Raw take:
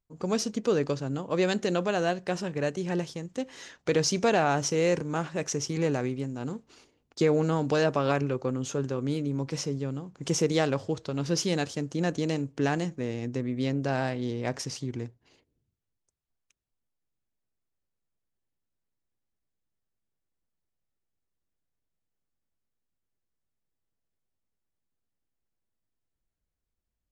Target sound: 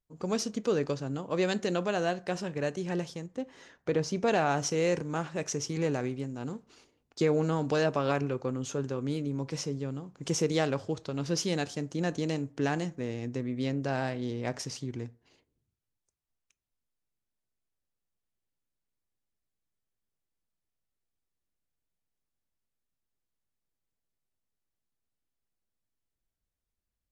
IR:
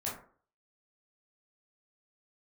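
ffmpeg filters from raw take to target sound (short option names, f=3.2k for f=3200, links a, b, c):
-filter_complex "[0:a]asplit=3[a][b][c];[a]afade=t=out:st=3.26:d=0.02[d];[b]highshelf=f=2.2k:g=-11,afade=t=in:st=3.26:d=0.02,afade=t=out:st=4.27:d=0.02[e];[c]afade=t=in:st=4.27:d=0.02[f];[d][e][f]amix=inputs=3:normalize=0,asplit=2[g][h];[1:a]atrim=start_sample=2205,lowshelf=f=430:g=-10[i];[h][i]afir=irnorm=-1:irlink=0,volume=-18.5dB[j];[g][j]amix=inputs=2:normalize=0,volume=-3dB" -ar 32000 -c:a libvorbis -b:a 128k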